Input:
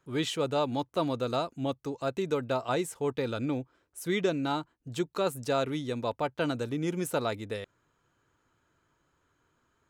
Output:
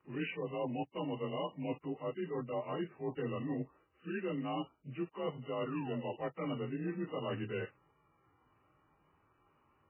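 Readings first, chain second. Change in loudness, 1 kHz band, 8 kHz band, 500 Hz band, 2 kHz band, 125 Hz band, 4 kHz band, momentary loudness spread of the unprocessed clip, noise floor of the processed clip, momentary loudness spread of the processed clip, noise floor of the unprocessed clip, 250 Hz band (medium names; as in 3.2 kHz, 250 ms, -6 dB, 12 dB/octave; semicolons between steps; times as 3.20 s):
-8.0 dB, -9.0 dB, under -35 dB, -8.5 dB, -8.0 dB, -6.5 dB, -12.0 dB, 7 LU, -73 dBFS, 4 LU, -74 dBFS, -6.5 dB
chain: frequency axis rescaled in octaves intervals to 89%; reverse; compression 12:1, threshold -38 dBFS, peak gain reduction 14.5 dB; reverse; painted sound fall, 5.65–6.16 s, 330–1500 Hz -53 dBFS; trim +4 dB; MP3 8 kbps 8 kHz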